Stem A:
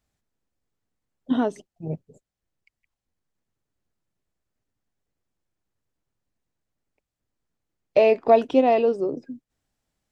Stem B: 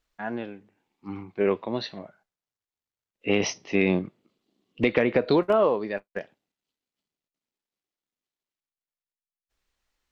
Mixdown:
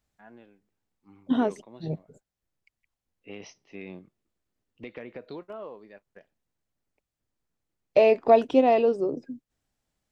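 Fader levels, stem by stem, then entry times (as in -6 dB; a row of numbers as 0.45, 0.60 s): -1.5, -19.0 dB; 0.00, 0.00 s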